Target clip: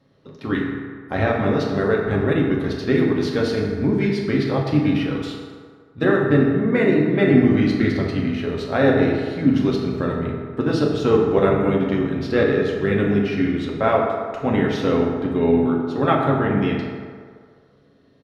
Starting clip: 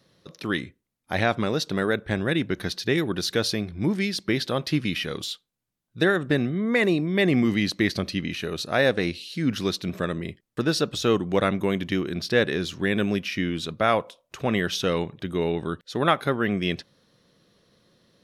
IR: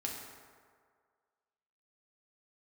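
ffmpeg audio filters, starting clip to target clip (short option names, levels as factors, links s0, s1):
-filter_complex "[0:a]lowpass=f=1200:p=1,asplit=2[s0][s1];[s1]asetrate=33038,aresample=44100,atempo=1.33484,volume=0.316[s2];[s0][s2]amix=inputs=2:normalize=0[s3];[1:a]atrim=start_sample=2205[s4];[s3][s4]afir=irnorm=-1:irlink=0,volume=1.68"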